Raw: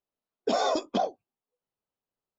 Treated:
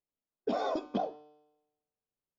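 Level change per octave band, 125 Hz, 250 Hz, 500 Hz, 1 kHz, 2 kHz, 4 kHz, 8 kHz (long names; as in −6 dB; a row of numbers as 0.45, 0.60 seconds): −2.5 dB, −3.0 dB, −6.0 dB, −6.5 dB, −8.0 dB, −12.5 dB, can't be measured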